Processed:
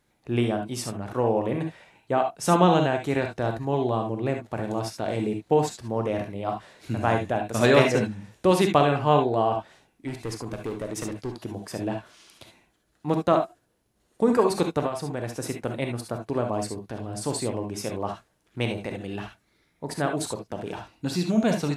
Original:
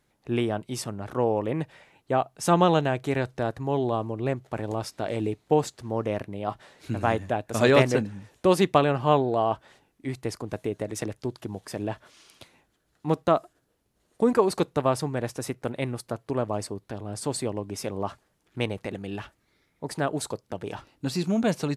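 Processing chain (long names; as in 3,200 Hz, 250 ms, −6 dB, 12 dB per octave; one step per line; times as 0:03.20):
0:10.07–0:11.37: hard clipping −26.5 dBFS, distortion −26 dB
0:14.82–0:15.37: downward compressor 6 to 1, threshold −26 dBFS, peak gain reduction 9 dB
reverb whose tail is shaped and stops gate 90 ms rising, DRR 4 dB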